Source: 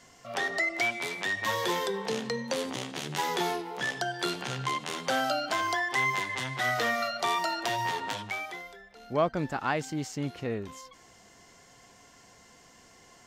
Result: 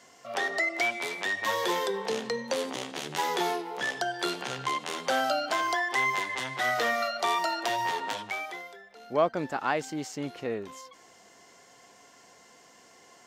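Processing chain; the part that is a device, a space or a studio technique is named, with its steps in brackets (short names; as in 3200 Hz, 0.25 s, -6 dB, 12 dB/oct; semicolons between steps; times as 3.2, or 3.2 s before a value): filter by subtraction (in parallel: LPF 460 Hz 12 dB/oct + phase invert)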